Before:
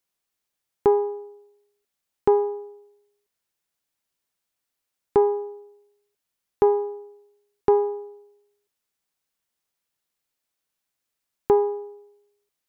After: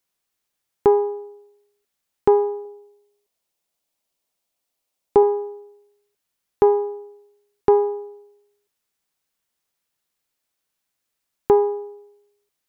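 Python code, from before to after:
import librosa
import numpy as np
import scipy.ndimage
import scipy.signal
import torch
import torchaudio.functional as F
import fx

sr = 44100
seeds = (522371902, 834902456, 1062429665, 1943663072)

y = fx.graphic_eq_15(x, sr, hz=(100, 630, 1600), db=(-9, 5, -6), at=(2.65, 5.23))
y = y * librosa.db_to_amplitude(3.0)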